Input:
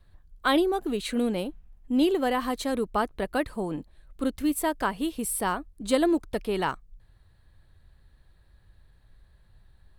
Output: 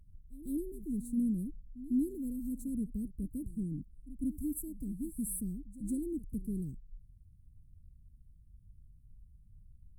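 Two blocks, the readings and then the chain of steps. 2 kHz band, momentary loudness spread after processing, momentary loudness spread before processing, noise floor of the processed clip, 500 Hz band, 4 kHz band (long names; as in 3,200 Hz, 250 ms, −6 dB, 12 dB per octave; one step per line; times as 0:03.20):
below −40 dB, 11 LU, 9 LU, −60 dBFS, −21.5 dB, below −40 dB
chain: inverse Chebyshev band-stop filter 780–2,900 Hz, stop band 70 dB
high shelf with overshoot 3,700 Hz −6.5 dB, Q 1.5
echo ahead of the sound 151 ms −16.5 dB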